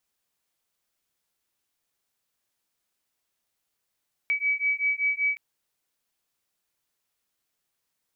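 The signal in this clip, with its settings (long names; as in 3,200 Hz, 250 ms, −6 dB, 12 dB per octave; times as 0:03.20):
two tones that beat 2,280 Hz, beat 5.2 Hz, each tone −26 dBFS 1.07 s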